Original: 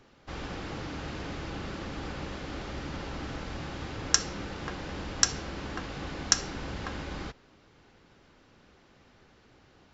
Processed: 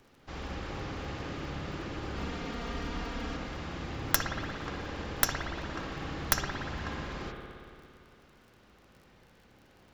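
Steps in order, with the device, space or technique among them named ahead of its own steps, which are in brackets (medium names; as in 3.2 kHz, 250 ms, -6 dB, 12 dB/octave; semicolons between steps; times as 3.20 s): record under a worn stylus (tracing distortion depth 0.17 ms; crackle 44 per s -46 dBFS; pink noise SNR 38 dB); 2.15–3.37 s: comb 4.3 ms, depth 88%; spring tank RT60 2.4 s, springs 57 ms, chirp 75 ms, DRR 1.5 dB; trim -3 dB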